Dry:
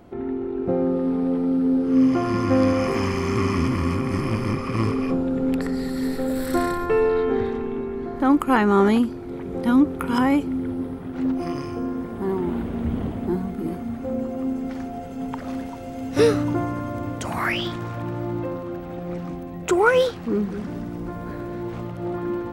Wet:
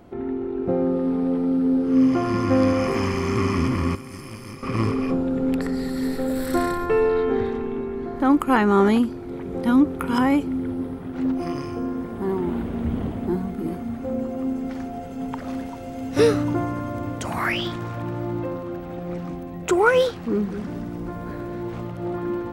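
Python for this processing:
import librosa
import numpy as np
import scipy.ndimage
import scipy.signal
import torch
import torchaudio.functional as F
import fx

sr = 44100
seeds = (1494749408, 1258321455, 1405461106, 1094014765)

y = fx.pre_emphasis(x, sr, coefficient=0.8, at=(3.95, 4.63))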